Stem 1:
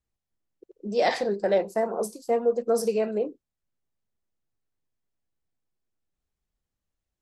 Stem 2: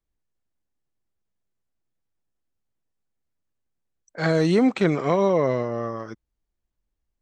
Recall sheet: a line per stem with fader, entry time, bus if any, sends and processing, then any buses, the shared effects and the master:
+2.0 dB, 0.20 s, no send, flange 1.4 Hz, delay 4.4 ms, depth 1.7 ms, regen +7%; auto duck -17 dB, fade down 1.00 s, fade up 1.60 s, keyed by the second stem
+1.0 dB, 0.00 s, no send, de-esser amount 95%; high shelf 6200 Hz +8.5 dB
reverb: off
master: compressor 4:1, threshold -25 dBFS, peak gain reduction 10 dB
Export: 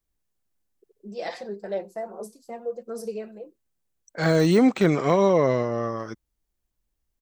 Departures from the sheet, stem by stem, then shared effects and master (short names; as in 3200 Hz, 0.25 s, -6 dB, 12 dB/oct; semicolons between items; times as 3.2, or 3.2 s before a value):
stem 1 +2.0 dB -> -6.0 dB; master: missing compressor 4:1, threshold -25 dBFS, peak gain reduction 10 dB